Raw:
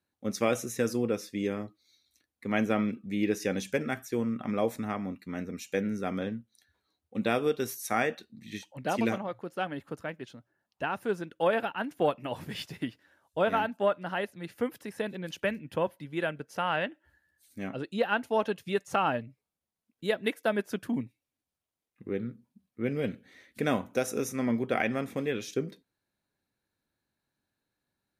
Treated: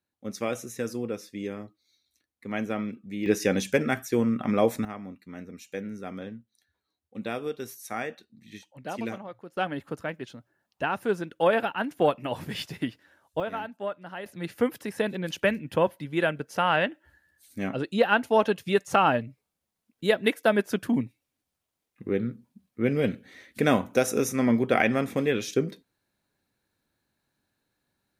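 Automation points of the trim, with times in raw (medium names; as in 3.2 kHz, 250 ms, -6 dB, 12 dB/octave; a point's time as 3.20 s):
-3 dB
from 3.26 s +6 dB
from 4.85 s -5 dB
from 9.57 s +4 dB
from 13.40 s -6 dB
from 14.26 s +6 dB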